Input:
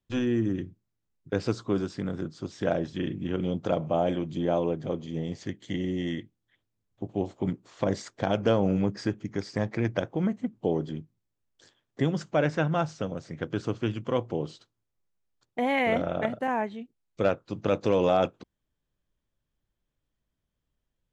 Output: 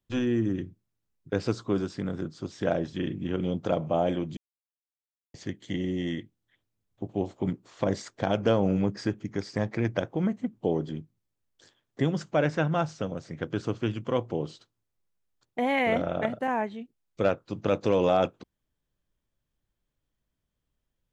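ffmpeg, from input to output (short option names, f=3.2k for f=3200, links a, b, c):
-filter_complex "[0:a]asplit=3[a][b][c];[a]atrim=end=4.37,asetpts=PTS-STARTPTS,afade=t=out:st=4.366:d=0.004:c=hsin[d];[b]atrim=start=4.37:end=5.34,asetpts=PTS-STARTPTS,volume=0[e];[c]atrim=start=5.34,asetpts=PTS-STARTPTS,afade=t=in:d=0.004:c=hsin[f];[d][e][f]concat=n=3:v=0:a=1"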